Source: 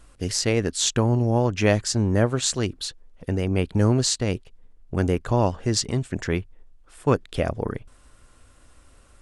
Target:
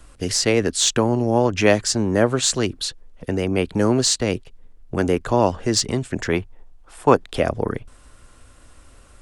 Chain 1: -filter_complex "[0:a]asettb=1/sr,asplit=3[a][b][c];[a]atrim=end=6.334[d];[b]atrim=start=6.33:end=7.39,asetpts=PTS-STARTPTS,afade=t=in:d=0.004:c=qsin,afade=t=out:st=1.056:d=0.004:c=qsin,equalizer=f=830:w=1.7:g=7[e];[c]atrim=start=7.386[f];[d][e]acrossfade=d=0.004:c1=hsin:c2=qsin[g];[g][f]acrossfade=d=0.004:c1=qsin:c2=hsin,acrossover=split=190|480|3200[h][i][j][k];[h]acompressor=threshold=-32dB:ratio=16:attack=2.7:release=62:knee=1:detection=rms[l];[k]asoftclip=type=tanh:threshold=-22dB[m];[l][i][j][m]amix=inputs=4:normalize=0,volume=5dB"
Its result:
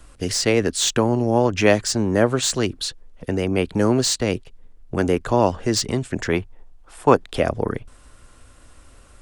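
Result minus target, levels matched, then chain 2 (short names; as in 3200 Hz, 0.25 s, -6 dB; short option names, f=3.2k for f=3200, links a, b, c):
soft clip: distortion +10 dB
-filter_complex "[0:a]asettb=1/sr,asplit=3[a][b][c];[a]atrim=end=6.334[d];[b]atrim=start=6.33:end=7.39,asetpts=PTS-STARTPTS,afade=t=in:d=0.004:c=qsin,afade=t=out:st=1.056:d=0.004:c=qsin,equalizer=f=830:w=1.7:g=7[e];[c]atrim=start=7.386[f];[d][e]acrossfade=d=0.004:c1=hsin:c2=qsin[g];[g][f]acrossfade=d=0.004:c1=qsin:c2=hsin,acrossover=split=190|480|3200[h][i][j][k];[h]acompressor=threshold=-32dB:ratio=16:attack=2.7:release=62:knee=1:detection=rms[l];[k]asoftclip=type=tanh:threshold=-12.5dB[m];[l][i][j][m]amix=inputs=4:normalize=0,volume=5dB"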